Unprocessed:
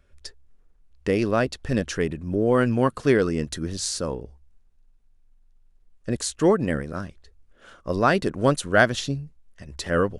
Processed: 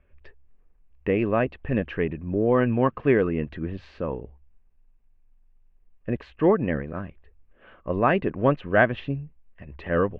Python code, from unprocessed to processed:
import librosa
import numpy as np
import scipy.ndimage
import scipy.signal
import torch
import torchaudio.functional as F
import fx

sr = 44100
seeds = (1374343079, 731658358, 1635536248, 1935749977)

y = scipy.signal.sosfilt(scipy.signal.cheby1(4, 1.0, 2700.0, 'lowpass', fs=sr, output='sos'), x)
y = fx.notch(y, sr, hz=1400.0, q=8.1)